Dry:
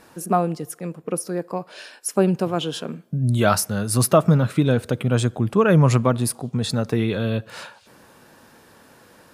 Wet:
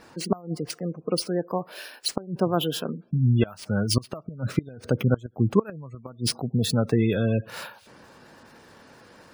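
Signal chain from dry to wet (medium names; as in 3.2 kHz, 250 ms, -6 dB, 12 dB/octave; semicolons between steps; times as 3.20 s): inverted gate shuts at -8 dBFS, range -25 dB; careless resampling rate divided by 3×, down none, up hold; spectral gate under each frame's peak -25 dB strong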